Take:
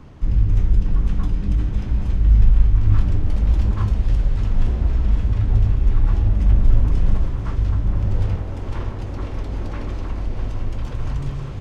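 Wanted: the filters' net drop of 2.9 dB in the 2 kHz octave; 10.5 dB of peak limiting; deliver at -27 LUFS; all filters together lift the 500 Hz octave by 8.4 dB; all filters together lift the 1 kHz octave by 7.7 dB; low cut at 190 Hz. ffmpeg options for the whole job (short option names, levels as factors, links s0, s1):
-af "highpass=190,equalizer=f=500:t=o:g=9,equalizer=f=1000:t=o:g=8.5,equalizer=f=2000:t=o:g=-8,volume=2.37,alimiter=limit=0.126:level=0:latency=1"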